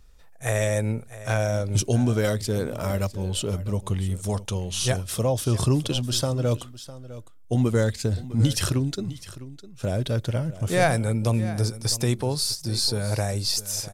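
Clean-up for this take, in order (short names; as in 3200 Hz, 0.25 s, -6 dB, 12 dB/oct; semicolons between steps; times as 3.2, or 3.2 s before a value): inverse comb 0.655 s -16 dB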